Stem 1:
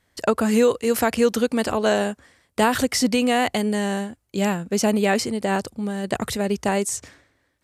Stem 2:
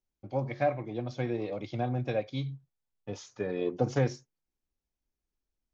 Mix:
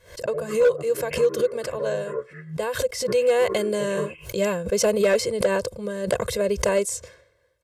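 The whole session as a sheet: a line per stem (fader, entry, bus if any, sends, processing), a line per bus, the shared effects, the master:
2.91 s -14.5 dB -> 3.59 s -5 dB, 0.00 s, no send, peaking EQ 510 Hz +11.5 dB 0.36 oct
0.0 dB, 0.00 s, no send, frequency axis rescaled in octaves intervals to 75%; high-pass 420 Hz 6 dB/octave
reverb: none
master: comb 1.9 ms, depth 98%; hard clipper -12.5 dBFS, distortion -19 dB; swell ahead of each attack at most 130 dB/s

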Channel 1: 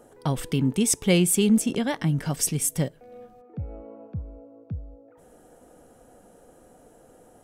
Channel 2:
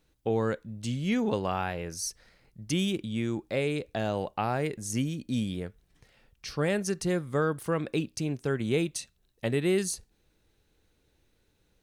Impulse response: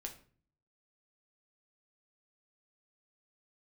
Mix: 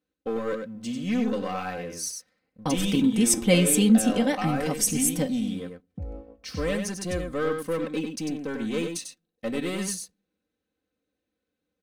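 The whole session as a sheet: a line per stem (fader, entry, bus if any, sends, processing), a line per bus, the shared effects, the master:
-3.5 dB, 2.40 s, send -6 dB, no echo send, gate -40 dBFS, range -40 dB
-8.5 dB, 0.00 s, send -12.5 dB, echo send -4.5 dB, high-pass 130 Hz 12 dB/octave; waveshaping leveller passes 2; band-stop 870 Hz, Q 5.6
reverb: on, RT60 0.45 s, pre-delay 7 ms
echo: delay 97 ms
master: comb 3.9 ms, depth 74%; tape noise reduction on one side only decoder only

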